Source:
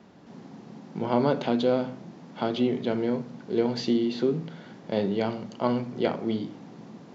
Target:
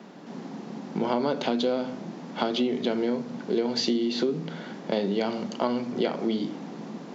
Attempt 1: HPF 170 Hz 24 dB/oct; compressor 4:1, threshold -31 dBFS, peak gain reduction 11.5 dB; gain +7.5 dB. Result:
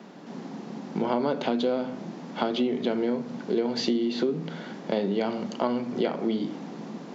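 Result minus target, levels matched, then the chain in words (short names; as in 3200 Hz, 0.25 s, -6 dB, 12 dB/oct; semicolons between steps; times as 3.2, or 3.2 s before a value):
8000 Hz band -3.5 dB
HPF 170 Hz 24 dB/oct; dynamic EQ 5700 Hz, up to +6 dB, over -52 dBFS, Q 0.78; compressor 4:1, threshold -31 dBFS, peak gain reduction 11.5 dB; gain +7.5 dB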